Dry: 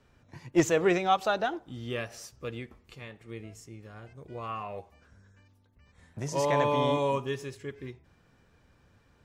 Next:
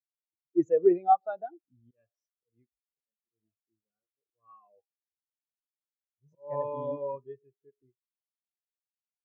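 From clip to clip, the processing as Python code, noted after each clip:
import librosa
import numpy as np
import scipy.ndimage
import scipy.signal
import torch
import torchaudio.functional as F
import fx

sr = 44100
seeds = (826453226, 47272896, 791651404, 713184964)

y = fx.noise_reduce_blind(x, sr, reduce_db=12)
y = fx.auto_swell(y, sr, attack_ms=184.0)
y = fx.spectral_expand(y, sr, expansion=2.5)
y = F.gain(torch.from_numpy(y), 2.0).numpy()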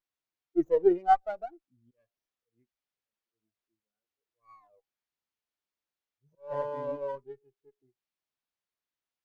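y = fx.low_shelf(x, sr, hz=140.0, db=-9.5)
y = fx.running_max(y, sr, window=5)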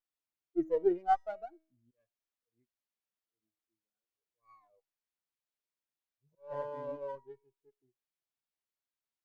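y = fx.comb_fb(x, sr, f0_hz=320.0, decay_s=0.54, harmonics='all', damping=0.0, mix_pct=50)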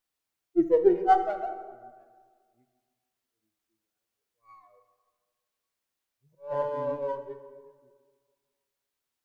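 y = fx.rev_plate(x, sr, seeds[0], rt60_s=1.7, hf_ratio=0.6, predelay_ms=0, drr_db=7.5)
y = F.gain(torch.from_numpy(y), 8.0).numpy()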